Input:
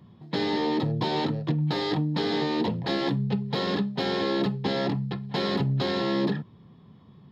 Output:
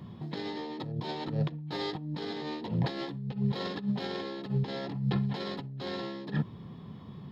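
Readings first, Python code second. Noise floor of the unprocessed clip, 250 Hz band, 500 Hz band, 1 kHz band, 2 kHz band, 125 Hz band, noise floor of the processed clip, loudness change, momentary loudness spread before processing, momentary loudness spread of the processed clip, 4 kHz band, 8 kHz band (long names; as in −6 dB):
−53 dBFS, −7.5 dB, −9.5 dB, −9.0 dB, −9.0 dB, −4.0 dB, −46 dBFS, −7.0 dB, 3 LU, 7 LU, −9.0 dB, can't be measured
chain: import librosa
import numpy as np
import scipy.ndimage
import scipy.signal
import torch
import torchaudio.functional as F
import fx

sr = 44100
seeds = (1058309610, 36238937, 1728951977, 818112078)

y = fx.over_compress(x, sr, threshold_db=-32.0, ratio=-0.5)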